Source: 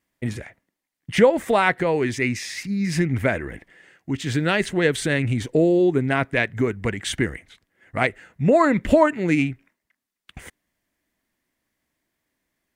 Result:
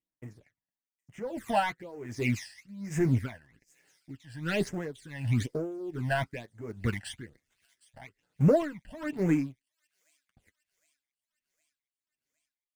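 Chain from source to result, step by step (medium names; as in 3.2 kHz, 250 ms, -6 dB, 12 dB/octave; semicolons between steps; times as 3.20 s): 7.33–8.04 s: cycle switcher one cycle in 3, muted; waveshaping leveller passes 2; flange 0.23 Hz, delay 6.2 ms, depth 3.5 ms, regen -35%; in parallel at -9.5 dB: small samples zeroed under -20.5 dBFS; on the sum: phase shifter stages 12, 1.1 Hz, lowest notch 370–4200 Hz; on a send: feedback echo behind a high-pass 762 ms, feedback 61%, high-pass 5.1 kHz, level -19 dB; on the sum: logarithmic tremolo 1.3 Hz, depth 20 dB; trim -8.5 dB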